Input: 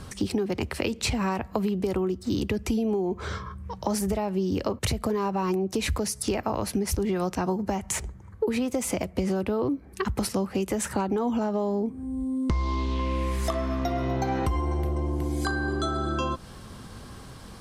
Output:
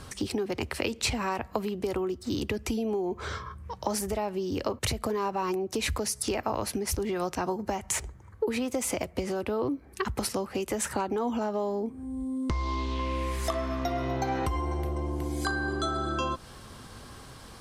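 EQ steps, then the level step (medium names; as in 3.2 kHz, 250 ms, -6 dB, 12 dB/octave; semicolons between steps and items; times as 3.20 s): peaking EQ 190 Hz -7 dB 0.22 oct; bass shelf 430 Hz -4.5 dB; 0.0 dB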